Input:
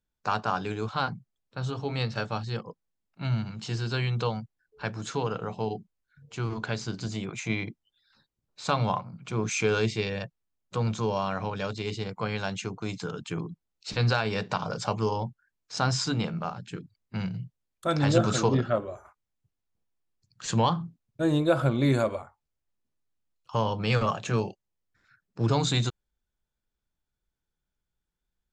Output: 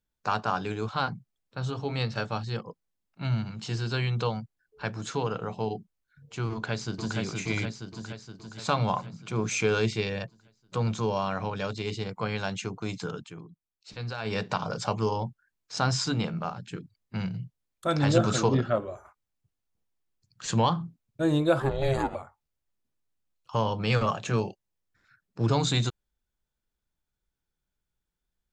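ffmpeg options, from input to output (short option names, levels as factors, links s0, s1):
-filter_complex "[0:a]asplit=2[s0][s1];[s1]afade=t=in:st=6.51:d=0.01,afade=t=out:st=7.18:d=0.01,aecho=0:1:470|940|1410|1880|2350|2820|3290|3760|4230:0.749894|0.449937|0.269962|0.161977|0.0971863|0.0583118|0.0349871|0.0209922|0.0125953[s2];[s0][s2]amix=inputs=2:normalize=0,asplit=3[s3][s4][s5];[s3]afade=t=out:st=21.59:d=0.02[s6];[s4]aeval=exprs='val(0)*sin(2*PI*270*n/s)':c=same,afade=t=in:st=21.59:d=0.02,afade=t=out:st=22.14:d=0.02[s7];[s5]afade=t=in:st=22.14:d=0.02[s8];[s6][s7][s8]amix=inputs=3:normalize=0,asplit=3[s9][s10][s11];[s9]atrim=end=13.31,asetpts=PTS-STARTPTS,afade=t=out:st=13.15:d=0.16:silence=0.281838[s12];[s10]atrim=start=13.31:end=14.17,asetpts=PTS-STARTPTS,volume=0.282[s13];[s11]atrim=start=14.17,asetpts=PTS-STARTPTS,afade=t=in:d=0.16:silence=0.281838[s14];[s12][s13][s14]concat=n=3:v=0:a=1"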